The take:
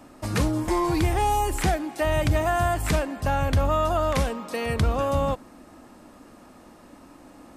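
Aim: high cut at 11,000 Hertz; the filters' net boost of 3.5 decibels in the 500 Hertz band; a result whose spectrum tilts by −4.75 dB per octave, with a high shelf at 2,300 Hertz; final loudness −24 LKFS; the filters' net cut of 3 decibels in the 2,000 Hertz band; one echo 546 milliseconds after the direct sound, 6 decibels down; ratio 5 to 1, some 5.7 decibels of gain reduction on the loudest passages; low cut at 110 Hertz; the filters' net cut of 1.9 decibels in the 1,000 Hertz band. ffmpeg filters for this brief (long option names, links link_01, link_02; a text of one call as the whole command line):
ffmpeg -i in.wav -af "highpass=110,lowpass=11000,equalizer=frequency=500:width_type=o:gain=6.5,equalizer=frequency=1000:width_type=o:gain=-5.5,equalizer=frequency=2000:width_type=o:gain=-5.5,highshelf=frequency=2300:gain=6,acompressor=threshold=-25dB:ratio=5,aecho=1:1:546:0.501,volume=4dB" out.wav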